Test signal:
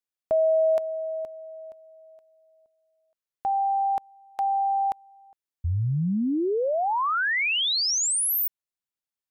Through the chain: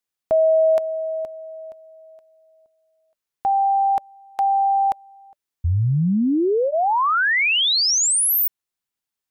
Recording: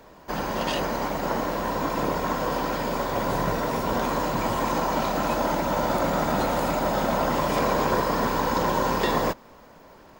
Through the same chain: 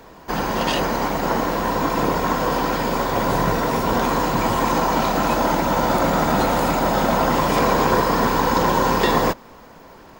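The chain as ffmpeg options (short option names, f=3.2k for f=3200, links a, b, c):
-af "bandreject=f=590:w=12,volume=6dB"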